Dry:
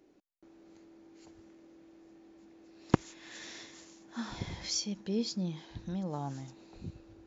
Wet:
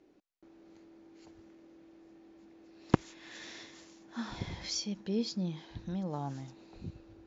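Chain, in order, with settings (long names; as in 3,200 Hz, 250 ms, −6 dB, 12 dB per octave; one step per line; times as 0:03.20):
low-pass filter 5,900 Hz 12 dB per octave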